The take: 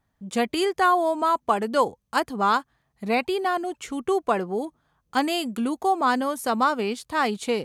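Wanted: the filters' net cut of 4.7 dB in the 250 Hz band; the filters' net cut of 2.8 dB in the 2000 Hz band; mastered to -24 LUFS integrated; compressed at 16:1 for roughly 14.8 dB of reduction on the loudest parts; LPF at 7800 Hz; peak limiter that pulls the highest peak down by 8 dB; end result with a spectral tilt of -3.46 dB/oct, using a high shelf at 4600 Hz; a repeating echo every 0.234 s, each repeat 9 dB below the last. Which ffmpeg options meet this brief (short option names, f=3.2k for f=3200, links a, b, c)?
-af "lowpass=7.8k,equalizer=f=250:t=o:g=-6,equalizer=f=2k:t=o:g=-5,highshelf=f=4.6k:g=5.5,acompressor=threshold=-31dB:ratio=16,alimiter=level_in=4dB:limit=-24dB:level=0:latency=1,volume=-4dB,aecho=1:1:234|468|702|936:0.355|0.124|0.0435|0.0152,volume=13.5dB"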